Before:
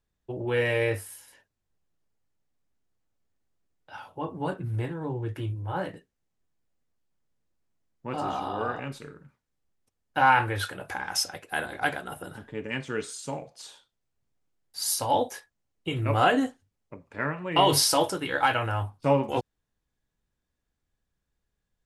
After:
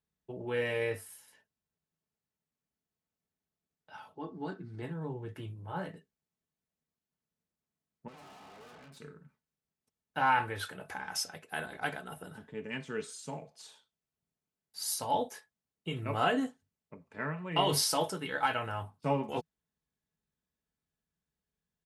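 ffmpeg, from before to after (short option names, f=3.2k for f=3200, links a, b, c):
-filter_complex "[0:a]asplit=3[a][b][c];[a]afade=t=out:st=4.13:d=0.02[d];[b]highpass=120,equalizer=f=150:t=q:w=4:g=-9,equalizer=f=320:t=q:w=4:g=6,equalizer=f=570:t=q:w=4:g=-9,equalizer=f=1k:t=q:w=4:g=-7,equalizer=f=2.7k:t=q:w=4:g=-7,equalizer=f=4.5k:t=q:w=4:g=8,lowpass=f=6.7k:w=0.5412,lowpass=f=6.7k:w=1.3066,afade=t=in:st=4.13:d=0.02,afade=t=out:st=4.81:d=0.02[e];[c]afade=t=in:st=4.81:d=0.02[f];[d][e][f]amix=inputs=3:normalize=0,asettb=1/sr,asplit=3[g][h][i];[g]atrim=end=8.084[j];[h]atrim=start=8.08:end=8.97,asetpts=PTS-STARTPTS,afade=t=in:d=0.004:c=qsin,afade=t=out:st=0.886:d=0.004:c=qsin,aeval=exprs='(tanh(178*val(0)+0.6)-tanh(0.6))/178':c=same[k];[i]atrim=start=8.966[l];[j][k]acrossfade=d=0.004:c1=hsin:c2=qsin[m];[m][l]acrossfade=d=0.004:c1=qsin:c2=hsin,highpass=68,equalizer=f=160:t=o:w=0.27:g=7,aecho=1:1:4.6:0.36,volume=-7.5dB"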